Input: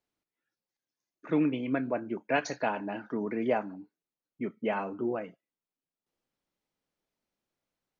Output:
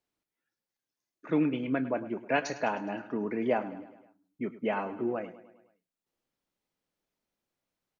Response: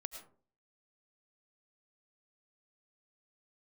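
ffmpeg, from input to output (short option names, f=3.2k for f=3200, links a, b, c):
-af "aecho=1:1:104|208|312|416|520:0.168|0.094|0.0526|0.0295|0.0165"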